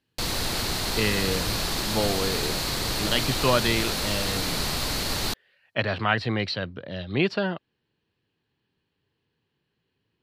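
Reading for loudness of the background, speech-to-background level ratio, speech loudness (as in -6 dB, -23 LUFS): -26.5 LUFS, -1.0 dB, -27.5 LUFS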